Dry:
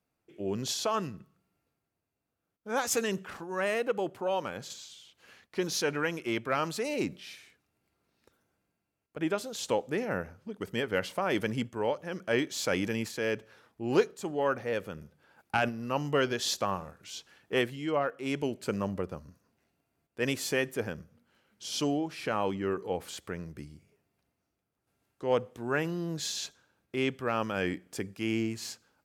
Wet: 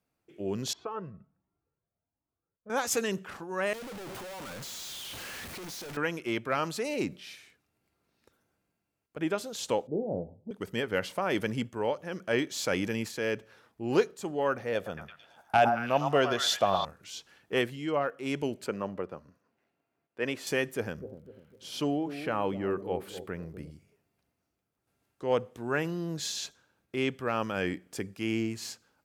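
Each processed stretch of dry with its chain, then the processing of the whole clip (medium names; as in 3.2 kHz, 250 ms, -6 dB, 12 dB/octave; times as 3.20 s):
0.73–2.70 s: low-pass 1.3 kHz + Shepard-style flanger rising 1.3 Hz
3.73–5.97 s: one-bit comparator + expander -30 dBFS
9.87–10.51 s: steep low-pass 770 Hz 48 dB/octave + doubling 18 ms -8.5 dB
14.75–16.85 s: small resonant body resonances 680/3500 Hz, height 12 dB, ringing for 25 ms + repeats whose band climbs or falls 110 ms, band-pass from 1 kHz, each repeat 0.7 oct, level -2 dB
18.66–20.47 s: high-pass 95 Hz + tone controls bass -7 dB, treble -12 dB
20.99–23.70 s: peaking EQ 6.3 kHz -9 dB 1.2 oct + bucket-brigade echo 249 ms, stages 1024, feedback 39%, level -10.5 dB + crackle 55 per s -57 dBFS
whole clip: none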